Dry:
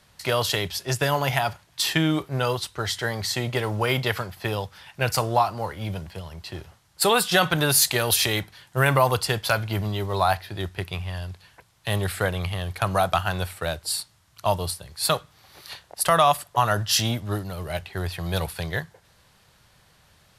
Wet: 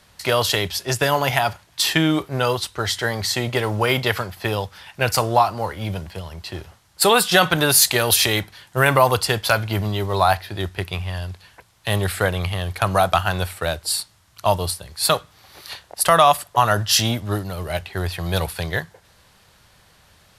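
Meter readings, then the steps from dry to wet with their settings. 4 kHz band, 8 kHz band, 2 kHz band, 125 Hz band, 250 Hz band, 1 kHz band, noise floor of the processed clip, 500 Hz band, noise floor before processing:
+4.5 dB, +4.5 dB, +4.5 dB, +2.5 dB, +4.0 dB, +4.5 dB, -55 dBFS, +4.5 dB, -60 dBFS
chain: bell 140 Hz -4.5 dB 0.44 oct; gain +4.5 dB

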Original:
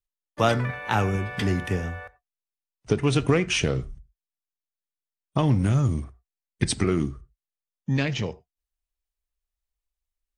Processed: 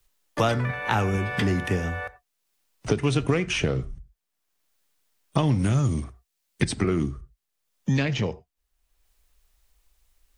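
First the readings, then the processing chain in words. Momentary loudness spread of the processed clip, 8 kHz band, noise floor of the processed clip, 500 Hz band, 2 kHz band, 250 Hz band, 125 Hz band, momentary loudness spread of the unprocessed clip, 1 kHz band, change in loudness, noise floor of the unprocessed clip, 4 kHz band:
13 LU, -3.0 dB, -79 dBFS, -0.5 dB, +1.0 dB, 0.0 dB, 0.0 dB, 11 LU, -0.5 dB, -0.5 dB, under -85 dBFS, -1.5 dB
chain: three-band squash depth 70%

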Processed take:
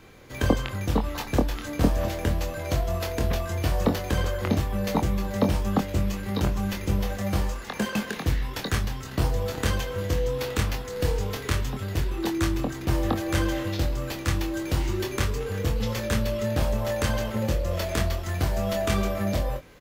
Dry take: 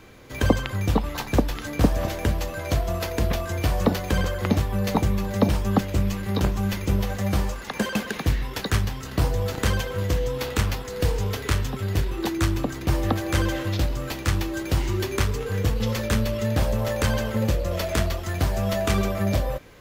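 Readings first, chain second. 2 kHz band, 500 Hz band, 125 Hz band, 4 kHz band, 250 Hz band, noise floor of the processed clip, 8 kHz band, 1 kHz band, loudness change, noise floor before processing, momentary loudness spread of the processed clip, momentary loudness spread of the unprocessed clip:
-2.5 dB, -1.5 dB, -3.0 dB, -2.0 dB, -2.0 dB, -37 dBFS, -2.0 dB, -2.0 dB, -2.0 dB, -36 dBFS, 3 LU, 4 LU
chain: doubler 24 ms -6 dB; gain -3 dB

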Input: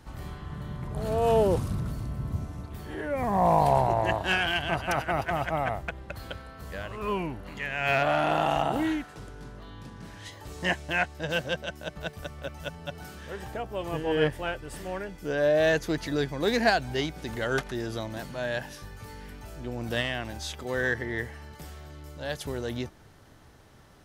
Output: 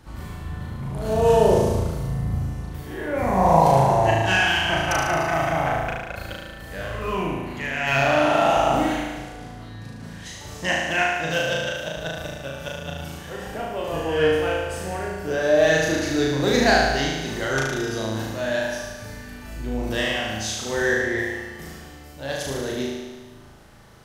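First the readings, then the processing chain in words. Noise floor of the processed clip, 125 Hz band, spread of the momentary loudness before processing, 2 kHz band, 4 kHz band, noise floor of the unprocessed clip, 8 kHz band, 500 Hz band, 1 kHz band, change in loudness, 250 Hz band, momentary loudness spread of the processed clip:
-41 dBFS, +6.0 dB, 19 LU, +6.5 dB, +7.0 dB, -51 dBFS, +11.5 dB, +6.5 dB, +6.0 dB, +6.5 dB, +6.0 dB, 18 LU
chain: dynamic EQ 6200 Hz, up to +8 dB, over -58 dBFS, Q 2.8; flutter echo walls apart 6.3 m, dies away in 1.3 s; gain +1.5 dB

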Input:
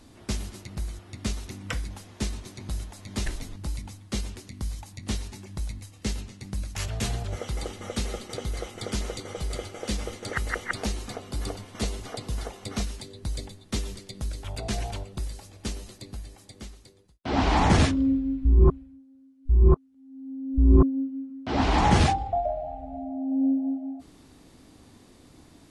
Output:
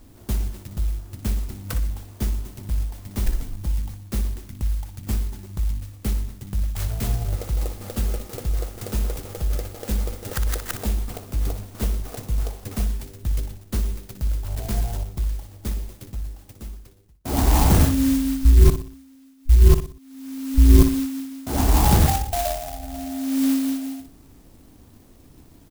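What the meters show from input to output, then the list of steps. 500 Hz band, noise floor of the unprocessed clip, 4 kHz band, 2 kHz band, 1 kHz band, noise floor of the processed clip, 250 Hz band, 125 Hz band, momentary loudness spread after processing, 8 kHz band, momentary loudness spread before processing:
+0.5 dB, -54 dBFS, 0.0 dB, -2.5 dB, -0.5 dB, -50 dBFS, +3.0 dB, +6.0 dB, 15 LU, +5.5 dB, 17 LU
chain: low shelf 77 Hz +11.5 dB; on a send: feedback echo 60 ms, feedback 38%, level -10 dB; on the sum: clock jitter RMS 0.12 ms

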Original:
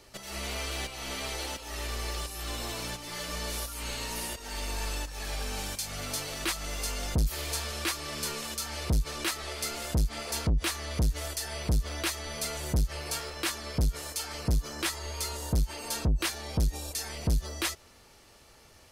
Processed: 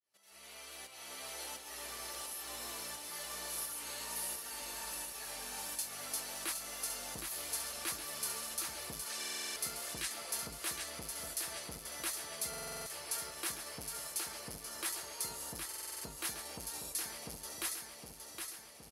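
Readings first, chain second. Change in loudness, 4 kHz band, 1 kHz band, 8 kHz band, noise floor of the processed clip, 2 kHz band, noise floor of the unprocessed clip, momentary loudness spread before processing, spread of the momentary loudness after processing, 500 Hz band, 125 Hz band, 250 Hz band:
-7.0 dB, -8.0 dB, -8.0 dB, -2.5 dB, -53 dBFS, -8.5 dB, -56 dBFS, 5 LU, 6 LU, -10.5 dB, -25.0 dB, -15.5 dB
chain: opening faded in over 1.50 s; dynamic EQ 2900 Hz, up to -4 dB, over -45 dBFS, Q 1; flange 0.18 Hz, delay 3.4 ms, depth 6.1 ms, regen -90%; compressor, threshold -32 dBFS, peak gain reduction 6 dB; HPF 640 Hz 6 dB/oct; spectral gain 9.1–9.38, 1500–9400 Hz +7 dB; bell 11000 Hz +10.5 dB 0.33 oct; feedback echo 0.765 s, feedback 59%, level -5.5 dB; stuck buffer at 9.19/12.49/15.67, samples 2048, times 7; gain -2 dB

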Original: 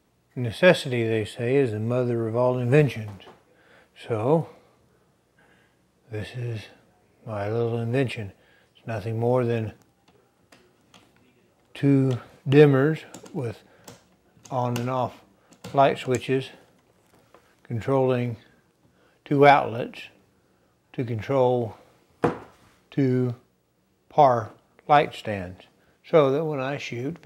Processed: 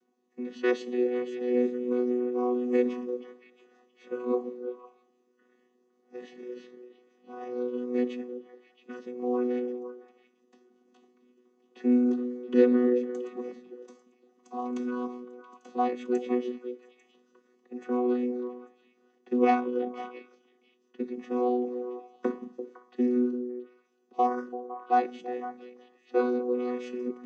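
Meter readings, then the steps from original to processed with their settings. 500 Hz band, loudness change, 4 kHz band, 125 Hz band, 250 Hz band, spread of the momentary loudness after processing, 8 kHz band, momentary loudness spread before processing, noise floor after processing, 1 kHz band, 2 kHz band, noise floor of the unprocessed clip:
-6.0 dB, -6.0 dB, under -15 dB, under -30 dB, -1.5 dB, 18 LU, under -10 dB, 17 LU, -70 dBFS, -7.0 dB, -12.5 dB, -66 dBFS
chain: chord vocoder bare fifth, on B3; bell 6200 Hz +9 dB 0.27 oct; on a send: delay with a stepping band-pass 0.169 s, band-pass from 160 Hz, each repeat 1.4 oct, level -4.5 dB; on the sum: gain -6 dB

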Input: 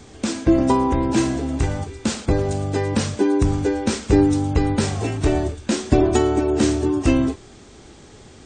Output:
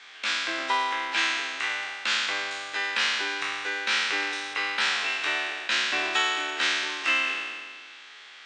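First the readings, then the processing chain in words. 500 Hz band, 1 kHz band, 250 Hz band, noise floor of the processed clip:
-18.5 dB, -3.5 dB, -26.0 dB, -47 dBFS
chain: spectral trails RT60 1.80 s; Butterworth band-pass 2300 Hz, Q 0.98; gain +5.5 dB

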